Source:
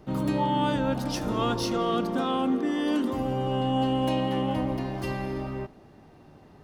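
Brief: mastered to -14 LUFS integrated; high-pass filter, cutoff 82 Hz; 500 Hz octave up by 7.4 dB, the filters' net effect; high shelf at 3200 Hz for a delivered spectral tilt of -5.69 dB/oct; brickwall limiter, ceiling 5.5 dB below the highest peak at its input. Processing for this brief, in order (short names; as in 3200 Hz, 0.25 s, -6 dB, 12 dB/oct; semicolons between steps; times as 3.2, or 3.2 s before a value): HPF 82 Hz; bell 500 Hz +9 dB; high shelf 3200 Hz -8.5 dB; gain +12 dB; limiter -4.5 dBFS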